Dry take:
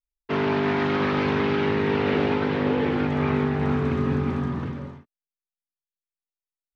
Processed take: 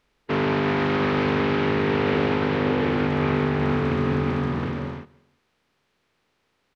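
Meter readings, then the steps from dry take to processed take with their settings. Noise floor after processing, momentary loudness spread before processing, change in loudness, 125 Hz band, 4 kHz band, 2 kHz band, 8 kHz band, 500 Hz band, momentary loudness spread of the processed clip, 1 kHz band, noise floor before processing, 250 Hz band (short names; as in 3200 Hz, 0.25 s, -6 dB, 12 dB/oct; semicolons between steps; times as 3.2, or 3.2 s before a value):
-72 dBFS, 6 LU, +1.0 dB, +1.0 dB, +2.0 dB, +2.0 dB, n/a, +1.0 dB, 6 LU, +1.5 dB, under -85 dBFS, +0.5 dB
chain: per-bin compression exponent 0.6; feedback echo 0.175 s, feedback 36%, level -24 dB; gain -1.5 dB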